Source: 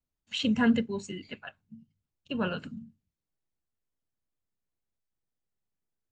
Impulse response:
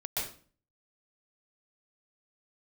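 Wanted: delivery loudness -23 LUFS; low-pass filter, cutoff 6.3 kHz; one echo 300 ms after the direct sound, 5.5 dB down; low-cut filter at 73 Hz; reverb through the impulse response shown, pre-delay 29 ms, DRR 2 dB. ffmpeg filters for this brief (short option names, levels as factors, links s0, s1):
-filter_complex "[0:a]highpass=73,lowpass=6300,aecho=1:1:300:0.531,asplit=2[s0][s1];[1:a]atrim=start_sample=2205,adelay=29[s2];[s1][s2]afir=irnorm=-1:irlink=0,volume=0.447[s3];[s0][s3]amix=inputs=2:normalize=0,volume=2"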